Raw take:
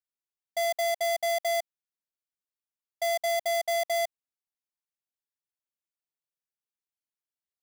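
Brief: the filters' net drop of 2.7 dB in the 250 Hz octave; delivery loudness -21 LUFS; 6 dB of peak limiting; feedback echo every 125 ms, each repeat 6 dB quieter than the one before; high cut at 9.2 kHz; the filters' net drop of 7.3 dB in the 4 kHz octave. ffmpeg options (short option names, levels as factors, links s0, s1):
-af "lowpass=9200,equalizer=f=250:t=o:g=-4,equalizer=f=4000:t=o:g=-9,alimiter=level_in=2.24:limit=0.0631:level=0:latency=1,volume=0.447,aecho=1:1:125|250|375|500|625|750:0.501|0.251|0.125|0.0626|0.0313|0.0157,volume=5.96"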